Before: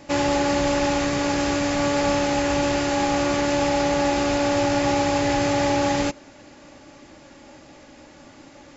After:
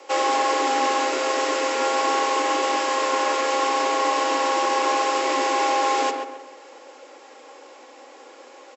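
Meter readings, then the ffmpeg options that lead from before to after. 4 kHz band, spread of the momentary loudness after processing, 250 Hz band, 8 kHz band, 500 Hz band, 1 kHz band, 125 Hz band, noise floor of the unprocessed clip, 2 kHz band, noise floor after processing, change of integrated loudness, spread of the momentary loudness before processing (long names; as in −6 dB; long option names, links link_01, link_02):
+1.0 dB, 2 LU, −9.5 dB, can't be measured, −1.5 dB, +4.5 dB, below −40 dB, −48 dBFS, +1.0 dB, −46 dBFS, 0.0 dB, 2 LU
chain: -filter_complex "[0:a]asplit=2[link_01][link_02];[link_02]adelay=135,lowpass=frequency=2200:poles=1,volume=-5.5dB,asplit=2[link_03][link_04];[link_04]adelay=135,lowpass=frequency=2200:poles=1,volume=0.4,asplit=2[link_05][link_06];[link_06]adelay=135,lowpass=frequency=2200:poles=1,volume=0.4,asplit=2[link_07][link_08];[link_08]adelay=135,lowpass=frequency=2200:poles=1,volume=0.4,asplit=2[link_09][link_10];[link_10]adelay=135,lowpass=frequency=2200:poles=1,volume=0.4[link_11];[link_01][link_03][link_05][link_07][link_09][link_11]amix=inputs=6:normalize=0,afreqshift=240"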